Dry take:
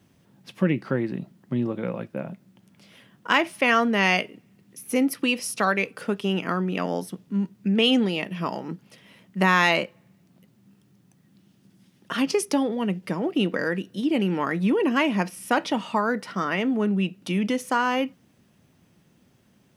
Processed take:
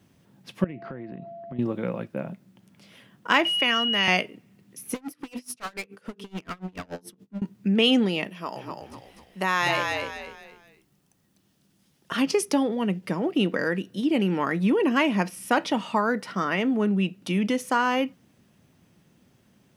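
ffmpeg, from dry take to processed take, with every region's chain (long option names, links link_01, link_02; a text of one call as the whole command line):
ffmpeg -i in.wav -filter_complex "[0:a]asettb=1/sr,asplit=3[link_01][link_02][link_03];[link_01]atrim=end=0.644[link_04];[link_02]atrim=start=0.64:end=1.59,asetpts=PTS-STARTPTS,afade=type=in:duration=0.004:curve=qsin,afade=type=out:start_time=0.946:duration=0.004:curve=qsin,lowpass=2700,aeval=exprs='val(0)+0.0126*sin(2*PI*680*n/s)':channel_layout=same,acompressor=threshold=-34dB:ratio=6:attack=3.2:release=140:knee=1:detection=peak[link_05];[link_03]atrim=start=1.586[link_06];[link_04][link_05]acrossfade=duration=0.004:curve1=hsin:curve2=qsin[link_07];[link_07][link_06]acrossfade=duration=0.004:curve1=qsin:curve2=hsin,asettb=1/sr,asplit=3[link_08][link_09][link_10];[link_08]atrim=end=3.454[link_11];[link_09]atrim=start=3.45:end=4.08,asetpts=PTS-STARTPTS,afade=type=in:duration=0.004:curve=qsin,afade=type=out:start_time=0.626:duration=0.004:curve=qsin,aeval=exprs='val(0)+0.0794*sin(2*PI*2900*n/s)':channel_layout=same,acrossover=split=310|650|1800[link_12][link_13][link_14][link_15];[link_12]acompressor=threshold=-34dB:ratio=3[link_16];[link_13]acompressor=threshold=-42dB:ratio=3[link_17];[link_14]acompressor=threshold=-31dB:ratio=3[link_18];[link_15]acompressor=threshold=-22dB:ratio=3[link_19];[link_16][link_17][link_18][link_19]amix=inputs=4:normalize=0[link_20];[link_10]atrim=start=4.076[link_21];[link_11][link_20]acrossfade=duration=0.004:curve1=hsin:curve2=qsin[link_22];[link_22][link_21]acrossfade=duration=0.004:curve1=qsin:curve2=hsin,asettb=1/sr,asplit=3[link_23][link_24][link_25];[link_23]atrim=end=4.944[link_26];[link_24]atrim=start=4.94:end=7.42,asetpts=PTS-STARTPTS,afade=type=in:duration=0.004:curve=qsin,afade=type=out:start_time=2.476:duration=0.004:curve=qsin,bandreject=frequency=49.51:width_type=h:width=4,bandreject=frequency=99.02:width_type=h:width=4,bandreject=frequency=148.53:width_type=h:width=4,bandreject=frequency=198.04:width_type=h:width=4,bandreject=frequency=247.55:width_type=h:width=4,bandreject=frequency=297.06:width_type=h:width=4,bandreject=frequency=346.57:width_type=h:width=4,bandreject=frequency=396.08:width_type=h:width=4,bandreject=frequency=445.59:width_type=h:width=4,volume=27.5dB,asoftclip=hard,volume=-27.5dB,aeval=exprs='val(0)*pow(10,-28*(0.5-0.5*cos(2*PI*7*n/s))/20)':channel_layout=same[link_27];[link_25]atrim=start=7.416[link_28];[link_26][link_27]acrossfade=duration=0.004:curve1=hsin:curve2=qsin[link_29];[link_29][link_28]acrossfade=duration=0.004:curve1=qsin:curve2=hsin,asettb=1/sr,asplit=3[link_30][link_31][link_32];[link_30]atrim=end=8.304[link_33];[link_31]atrim=start=8.3:end=12.12,asetpts=PTS-STARTPTS,afade=type=in:duration=0.004:curve=qsin,afade=type=out:start_time=3.816:duration=0.004:curve=qsin,highpass=frequency=660:poles=1,equalizer=frequency=2100:width=0.62:gain=-5,asplit=5[link_34][link_35][link_36][link_37][link_38];[link_35]adelay=248,afreqshift=-48,volume=-4dB[link_39];[link_36]adelay=496,afreqshift=-96,volume=-13.4dB[link_40];[link_37]adelay=744,afreqshift=-144,volume=-22.7dB[link_41];[link_38]adelay=992,afreqshift=-192,volume=-32.1dB[link_42];[link_34][link_39][link_40][link_41][link_42]amix=inputs=5:normalize=0,atrim=end_sample=168462[link_43];[link_32]atrim=start=12.116[link_44];[link_33][link_43]acrossfade=duration=0.004:curve1=hsin:curve2=qsin[link_45];[link_45][link_44]acrossfade=duration=0.004:curve1=qsin:curve2=hsin" out.wav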